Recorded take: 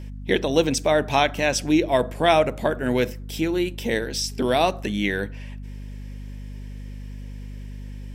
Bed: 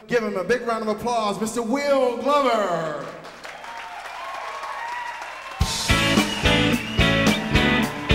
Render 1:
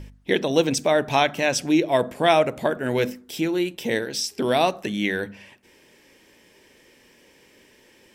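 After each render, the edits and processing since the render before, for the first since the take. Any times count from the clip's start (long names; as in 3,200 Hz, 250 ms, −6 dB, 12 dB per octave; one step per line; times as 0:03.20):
hum removal 50 Hz, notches 5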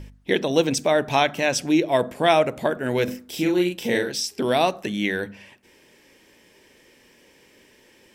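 0:03.04–0:04.12: double-tracking delay 39 ms −3 dB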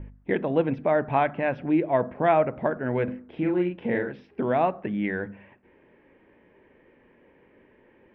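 Bessel low-pass filter 1,400 Hz, order 6
dynamic equaliser 400 Hz, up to −4 dB, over −30 dBFS, Q 1.1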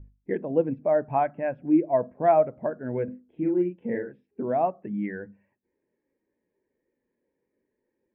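every bin expanded away from the loudest bin 1.5 to 1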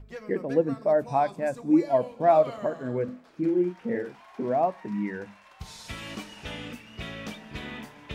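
mix in bed −19.5 dB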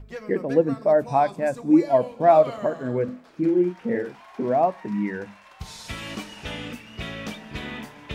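level +4 dB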